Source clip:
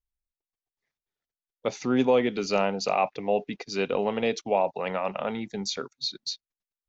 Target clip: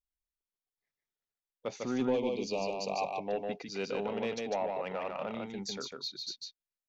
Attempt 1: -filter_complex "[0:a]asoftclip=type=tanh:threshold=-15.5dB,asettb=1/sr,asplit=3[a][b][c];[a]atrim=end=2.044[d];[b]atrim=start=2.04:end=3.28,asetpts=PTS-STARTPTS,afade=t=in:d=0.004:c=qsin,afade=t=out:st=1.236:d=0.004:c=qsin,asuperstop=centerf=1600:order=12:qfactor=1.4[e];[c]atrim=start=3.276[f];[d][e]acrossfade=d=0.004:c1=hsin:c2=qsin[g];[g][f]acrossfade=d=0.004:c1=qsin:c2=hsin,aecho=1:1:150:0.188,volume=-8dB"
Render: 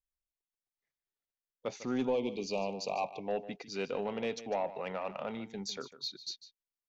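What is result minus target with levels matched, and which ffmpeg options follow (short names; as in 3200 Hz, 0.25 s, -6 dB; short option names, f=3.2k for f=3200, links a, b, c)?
echo-to-direct -11 dB
-filter_complex "[0:a]asoftclip=type=tanh:threshold=-15.5dB,asettb=1/sr,asplit=3[a][b][c];[a]atrim=end=2.044[d];[b]atrim=start=2.04:end=3.28,asetpts=PTS-STARTPTS,afade=t=in:d=0.004:c=qsin,afade=t=out:st=1.236:d=0.004:c=qsin,asuperstop=centerf=1600:order=12:qfactor=1.4[e];[c]atrim=start=3.276[f];[d][e]acrossfade=d=0.004:c1=hsin:c2=qsin[g];[g][f]acrossfade=d=0.004:c1=qsin:c2=hsin,aecho=1:1:150:0.668,volume=-8dB"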